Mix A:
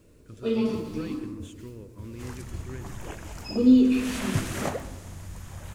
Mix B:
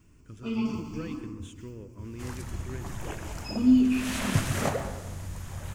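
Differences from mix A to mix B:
first sound: add static phaser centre 2.6 kHz, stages 8; second sound: send +8.5 dB

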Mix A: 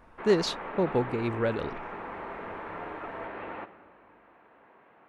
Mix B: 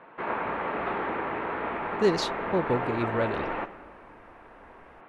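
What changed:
speech: entry +1.75 s; background +7.5 dB

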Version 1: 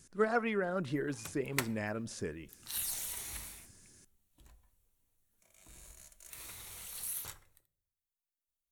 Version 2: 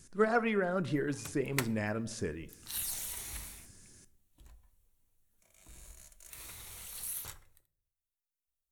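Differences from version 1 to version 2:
speech: send +11.0 dB; master: add bass shelf 78 Hz +6 dB

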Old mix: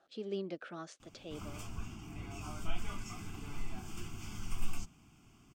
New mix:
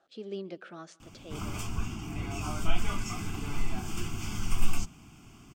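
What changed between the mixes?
background +9.5 dB; reverb: on, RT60 0.75 s

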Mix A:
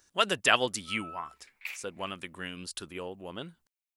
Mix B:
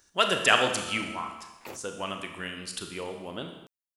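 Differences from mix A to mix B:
second sound: remove resonant high-pass 2.3 kHz, resonance Q 4.7; reverb: on, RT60 1.1 s

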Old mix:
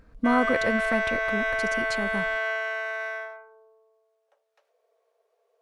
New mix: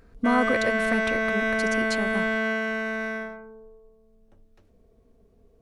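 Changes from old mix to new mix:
background: remove steep high-pass 500 Hz 48 dB/octave; master: add treble shelf 4.5 kHz +5 dB

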